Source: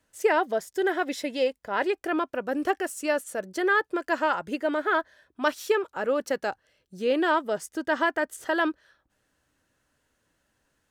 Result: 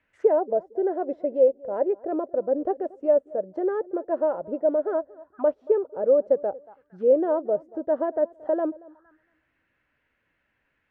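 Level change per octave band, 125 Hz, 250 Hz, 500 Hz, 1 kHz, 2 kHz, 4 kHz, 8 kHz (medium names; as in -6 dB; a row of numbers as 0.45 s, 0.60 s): no reading, -0.5 dB, +5.5 dB, -5.5 dB, under -20 dB, under -30 dB, under -35 dB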